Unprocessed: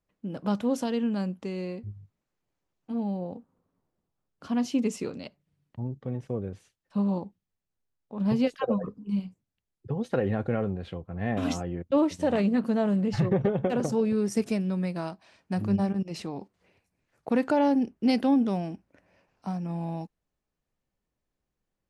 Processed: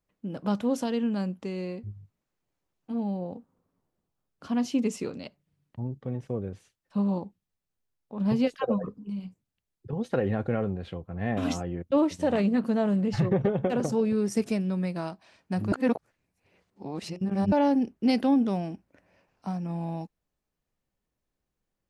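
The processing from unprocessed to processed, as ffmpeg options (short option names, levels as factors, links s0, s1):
-filter_complex "[0:a]asettb=1/sr,asplit=3[s0][s1][s2];[s0]atrim=end=8.944[s3];[s1]atrim=start=8.94:end=9.93,asetpts=PTS-STARTPTS,afade=t=in:d=0.004:c=qsin,afade=t=out:st=0.986:d=0.004:c=qsin,acompressor=threshold=0.0282:ratio=4:attack=3.2:release=140:knee=1:detection=peak[s4];[s2]atrim=start=9.926[s5];[s3][s4]acrossfade=d=0.004:c1=hsin:c2=qsin[s6];[s6][s5]acrossfade=d=0.004:c1=qsin:c2=hsin,asplit=3[s7][s8][s9];[s7]atrim=end=15.722[s10];[s8]atrim=start=15.718:end=17.522,asetpts=PTS-STARTPTS,areverse[s11];[s9]atrim=start=17.518[s12];[s10][s11]acrossfade=d=0.004:c1=hsin:c2=hsin[s13];[s13][s12]acrossfade=d=0.004:c1=hsin:c2=hsin"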